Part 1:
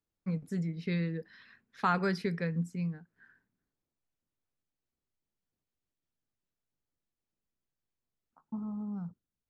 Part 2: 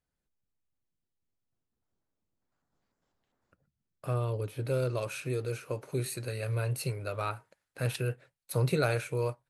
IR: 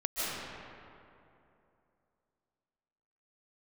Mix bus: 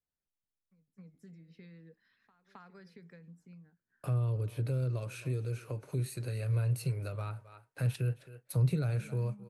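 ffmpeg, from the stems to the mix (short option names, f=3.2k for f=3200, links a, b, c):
-filter_complex "[0:a]acompressor=threshold=-33dB:ratio=12,adelay=450,volume=-9.5dB,asplit=2[a][b];[b]volume=-7dB[c];[1:a]agate=range=-13dB:threshold=-52dB:ratio=16:detection=peak,acontrast=85,volume=-4.5dB,asplit=3[d][e][f];[e]volume=-21.5dB[g];[f]apad=whole_len=438558[h];[a][h]sidechaingate=range=-24dB:threshold=-44dB:ratio=16:detection=peak[i];[c][g]amix=inputs=2:normalize=0,aecho=0:1:266:1[j];[i][d][j]amix=inputs=3:normalize=0,acrossover=split=210[k][l];[l]acompressor=threshold=-44dB:ratio=4[m];[k][m]amix=inputs=2:normalize=0"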